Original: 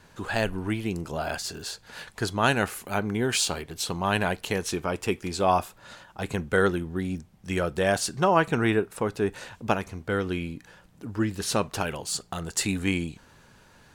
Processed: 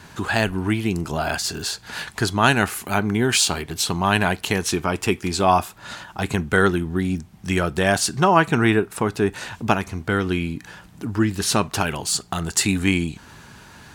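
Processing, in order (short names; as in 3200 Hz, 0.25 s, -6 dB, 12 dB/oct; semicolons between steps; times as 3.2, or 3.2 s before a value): HPF 43 Hz; bell 520 Hz -8.5 dB 0.39 oct; in parallel at 0 dB: compressor, threshold -39 dBFS, peak gain reduction 20.5 dB; on the sum: gain +5.5 dB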